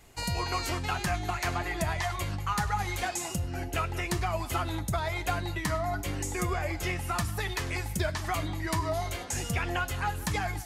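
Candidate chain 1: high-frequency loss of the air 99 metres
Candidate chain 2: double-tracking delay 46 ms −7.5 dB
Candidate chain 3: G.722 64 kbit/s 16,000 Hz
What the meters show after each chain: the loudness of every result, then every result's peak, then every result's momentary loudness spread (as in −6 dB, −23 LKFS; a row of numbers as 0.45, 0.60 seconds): −32.5, −30.5, −31.5 LKFS; −17.5, −16.0, −17.0 dBFS; 3, 2, 3 LU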